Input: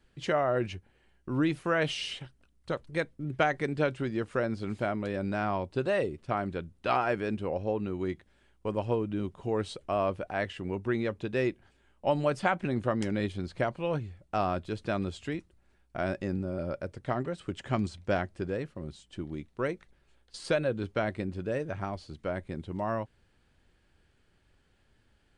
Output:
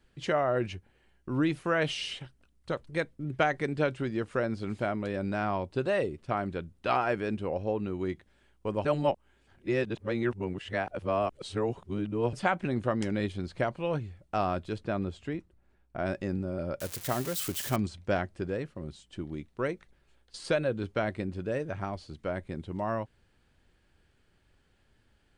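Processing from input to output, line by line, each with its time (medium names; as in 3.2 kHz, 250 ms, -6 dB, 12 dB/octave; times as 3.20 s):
8.85–12.33 s: reverse
14.78–16.06 s: treble shelf 2.4 kHz -9.5 dB
16.80–17.76 s: zero-crossing glitches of -25.5 dBFS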